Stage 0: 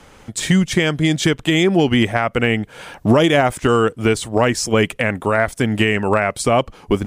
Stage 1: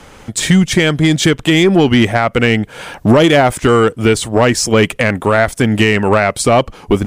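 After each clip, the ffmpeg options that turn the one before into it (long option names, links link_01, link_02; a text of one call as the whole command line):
ffmpeg -i in.wav -af "acontrast=66" out.wav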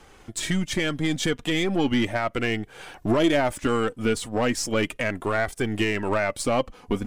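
ffmpeg -i in.wav -af "aeval=exprs='if(lt(val(0),0),0.708*val(0),val(0))':channel_layout=same,flanger=delay=2.5:depth=1.7:regen=43:speed=0.36:shape=triangular,volume=-7dB" out.wav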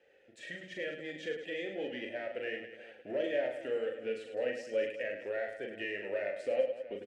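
ffmpeg -i in.wav -filter_complex "[0:a]asplit=3[link_01][link_02][link_03];[link_01]bandpass=frequency=530:width_type=q:width=8,volume=0dB[link_04];[link_02]bandpass=frequency=1840:width_type=q:width=8,volume=-6dB[link_05];[link_03]bandpass=frequency=2480:width_type=q:width=8,volume=-9dB[link_06];[link_04][link_05][link_06]amix=inputs=3:normalize=0,asplit=2[link_07][link_08];[link_08]aecho=0:1:40|104|206.4|370.2|632.4:0.631|0.398|0.251|0.158|0.1[link_09];[link_07][link_09]amix=inputs=2:normalize=0,volume=-3.5dB" out.wav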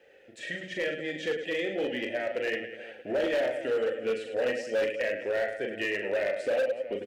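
ffmpeg -i in.wav -af "volume=31.5dB,asoftclip=hard,volume=-31.5dB,volume=8dB" out.wav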